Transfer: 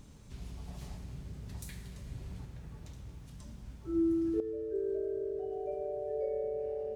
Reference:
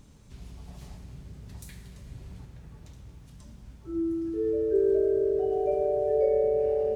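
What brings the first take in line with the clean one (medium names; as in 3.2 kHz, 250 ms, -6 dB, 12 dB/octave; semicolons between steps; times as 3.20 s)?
trim 0 dB, from 4.40 s +11 dB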